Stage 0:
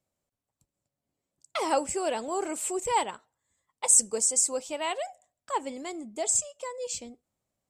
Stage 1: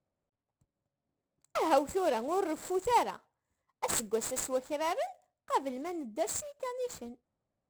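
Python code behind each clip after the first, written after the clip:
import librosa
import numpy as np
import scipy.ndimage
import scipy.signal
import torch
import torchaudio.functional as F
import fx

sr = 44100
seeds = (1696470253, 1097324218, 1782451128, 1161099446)

y = scipy.signal.medfilt(x, 15)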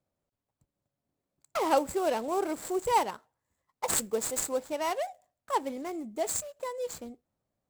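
y = fx.high_shelf(x, sr, hz=7400.0, db=4.5)
y = y * librosa.db_to_amplitude(1.5)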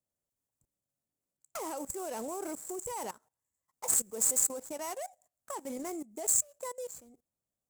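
y = fx.level_steps(x, sr, step_db=19)
y = fx.high_shelf_res(y, sr, hz=5400.0, db=10.5, q=1.5)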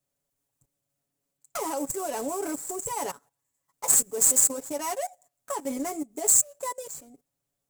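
y = x + 0.77 * np.pad(x, (int(7.1 * sr / 1000.0), 0))[:len(x)]
y = y * librosa.db_to_amplitude(5.5)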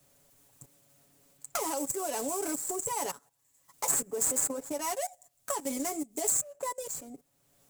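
y = fx.band_squash(x, sr, depth_pct=70)
y = y * librosa.db_to_amplitude(-3.0)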